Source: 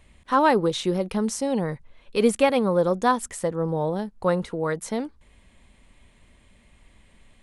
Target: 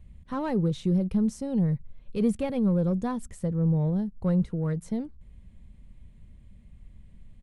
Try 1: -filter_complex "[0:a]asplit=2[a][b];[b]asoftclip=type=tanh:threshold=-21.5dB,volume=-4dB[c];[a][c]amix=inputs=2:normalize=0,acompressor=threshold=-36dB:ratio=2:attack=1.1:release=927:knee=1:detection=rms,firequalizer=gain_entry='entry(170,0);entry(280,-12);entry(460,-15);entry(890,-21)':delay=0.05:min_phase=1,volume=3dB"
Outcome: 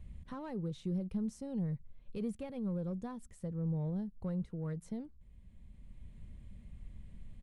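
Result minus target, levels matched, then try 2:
compressor: peak gain reduction +15 dB
-filter_complex "[0:a]asplit=2[a][b];[b]asoftclip=type=tanh:threshold=-21.5dB,volume=-4dB[c];[a][c]amix=inputs=2:normalize=0,firequalizer=gain_entry='entry(170,0);entry(280,-12);entry(460,-15);entry(890,-21)':delay=0.05:min_phase=1,volume=3dB"

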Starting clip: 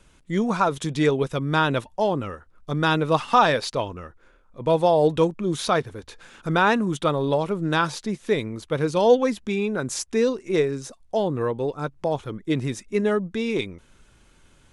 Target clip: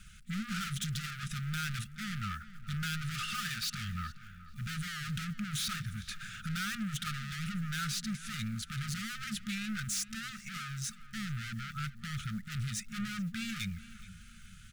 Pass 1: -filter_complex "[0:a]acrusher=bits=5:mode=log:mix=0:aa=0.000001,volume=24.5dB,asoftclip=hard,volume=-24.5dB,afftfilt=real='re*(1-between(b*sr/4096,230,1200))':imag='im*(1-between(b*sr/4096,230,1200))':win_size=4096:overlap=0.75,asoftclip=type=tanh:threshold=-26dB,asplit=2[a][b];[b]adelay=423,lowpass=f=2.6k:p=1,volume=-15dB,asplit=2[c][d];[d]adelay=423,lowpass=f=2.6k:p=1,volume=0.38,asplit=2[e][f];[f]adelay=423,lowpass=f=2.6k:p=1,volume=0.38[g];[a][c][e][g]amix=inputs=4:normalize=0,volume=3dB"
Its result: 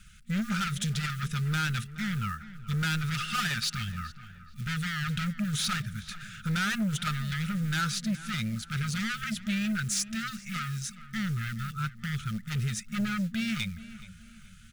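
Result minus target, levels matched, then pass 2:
overloaded stage: distortion -4 dB
-filter_complex "[0:a]acrusher=bits=5:mode=log:mix=0:aa=0.000001,volume=35.5dB,asoftclip=hard,volume=-35.5dB,afftfilt=real='re*(1-between(b*sr/4096,230,1200))':imag='im*(1-between(b*sr/4096,230,1200))':win_size=4096:overlap=0.75,asoftclip=type=tanh:threshold=-26dB,asplit=2[a][b];[b]adelay=423,lowpass=f=2.6k:p=1,volume=-15dB,asplit=2[c][d];[d]adelay=423,lowpass=f=2.6k:p=1,volume=0.38,asplit=2[e][f];[f]adelay=423,lowpass=f=2.6k:p=1,volume=0.38[g];[a][c][e][g]amix=inputs=4:normalize=0,volume=3dB"

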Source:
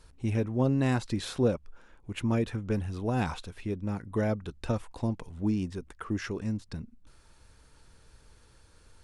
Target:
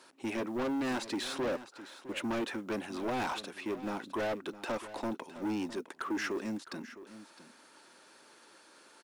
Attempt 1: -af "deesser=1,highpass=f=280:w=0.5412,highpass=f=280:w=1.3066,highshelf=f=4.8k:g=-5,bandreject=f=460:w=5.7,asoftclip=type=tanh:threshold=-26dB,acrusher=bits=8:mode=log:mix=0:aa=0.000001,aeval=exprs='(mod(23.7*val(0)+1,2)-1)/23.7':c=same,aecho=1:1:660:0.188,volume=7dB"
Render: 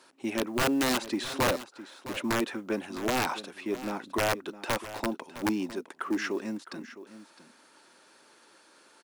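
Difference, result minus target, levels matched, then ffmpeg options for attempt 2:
soft clip: distortion -10 dB
-af "deesser=1,highpass=f=280:w=0.5412,highpass=f=280:w=1.3066,highshelf=f=4.8k:g=-5,bandreject=f=460:w=5.7,asoftclip=type=tanh:threshold=-37dB,acrusher=bits=8:mode=log:mix=0:aa=0.000001,aeval=exprs='(mod(23.7*val(0)+1,2)-1)/23.7':c=same,aecho=1:1:660:0.188,volume=7dB"

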